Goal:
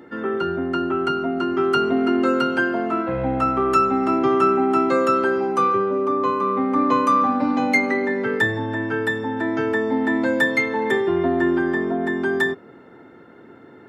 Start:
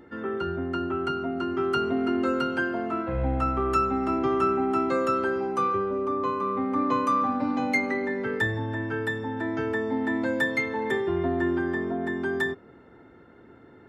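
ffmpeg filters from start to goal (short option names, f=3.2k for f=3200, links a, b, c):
-af "highpass=140,volume=6.5dB"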